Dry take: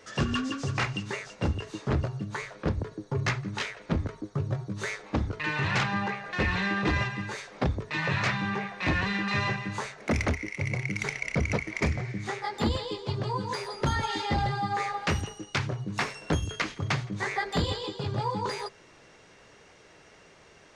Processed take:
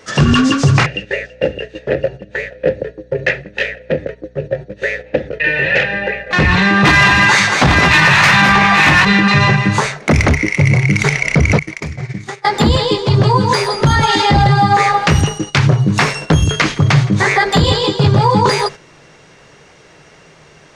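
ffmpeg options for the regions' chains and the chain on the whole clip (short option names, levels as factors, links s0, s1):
-filter_complex "[0:a]asettb=1/sr,asplit=3[s0][s1][s2];[s0]atrim=end=0.864[s3];[s1]atrim=start=0.86:end=6.31,asetpts=PTS-STARTPTS,afade=t=in:d=0.004:c=qsin,afade=t=out:st=5.446:d=0.004:c=qsin,asplit=3[s4][s5][s6];[s4]bandpass=f=530:t=q:w=8,volume=1[s7];[s5]bandpass=f=1840:t=q:w=8,volume=0.501[s8];[s6]bandpass=f=2480:t=q:w=8,volume=0.355[s9];[s7][s8][s9]amix=inputs=3:normalize=0,aeval=exprs='val(0)+0.000708*(sin(2*PI*60*n/s)+sin(2*PI*2*60*n/s)/2+sin(2*PI*3*60*n/s)/3+sin(2*PI*4*60*n/s)/4+sin(2*PI*5*60*n/s)/5)':c=same,acontrast=61[s10];[s2]atrim=start=6.306[s11];[s3][s10]acrossfade=d=0.004:c1=hsin:c2=qsin[s12];[s12][s11]acrossfade=d=0.004:c1=qsin:c2=hsin,asettb=1/sr,asplit=3[s13][s14][s15];[s13]atrim=end=6.844[s16];[s14]atrim=start=6.84:end=9.05,asetpts=PTS-STARTPTS,afade=t=in:d=0.004:c=qsin,afade=t=out:st=2.206:d=0.004:c=qsin,equalizer=f=450:t=o:w=0.76:g=-8.5,asplit=2[s17][s18];[s18]highpass=f=720:p=1,volume=7.08,asoftclip=type=tanh:threshold=0.178[s19];[s17][s19]amix=inputs=2:normalize=0,lowpass=f=5600:p=1,volume=0.501,aecho=1:1:55|206|217|834:0.266|0.282|0.376|0.447,atrim=end_sample=97461[s20];[s15]atrim=start=9.046[s21];[s16][s20]acrossfade=d=0.004:c1=hsin:c2=qsin[s22];[s22][s21]acrossfade=d=0.004:c1=qsin:c2=hsin,asettb=1/sr,asplit=3[s23][s24][s25];[s23]atrim=end=11.594[s26];[s24]atrim=start=11.59:end=12.45,asetpts=PTS-STARTPTS,afade=t=in:d=0.004:c=qsin,afade=t=out:st=0.856:d=0.004:c=qsin,agate=range=0.0224:threshold=0.0316:ratio=3:release=100:detection=peak,highshelf=f=4200:g=6,acompressor=threshold=0.0112:ratio=20:attack=3.2:release=140:knee=1:detection=peak[s27];[s25]atrim=start=12.446[s28];[s26][s27]acrossfade=d=0.004:c1=hsin:c2=qsin[s29];[s29][s28]acrossfade=d=0.004:c1=qsin:c2=hsin,agate=range=0.355:threshold=0.00631:ratio=16:detection=peak,equalizer=f=150:t=o:w=0.26:g=9.5,alimiter=level_in=10.6:limit=0.891:release=50:level=0:latency=1,volume=0.891"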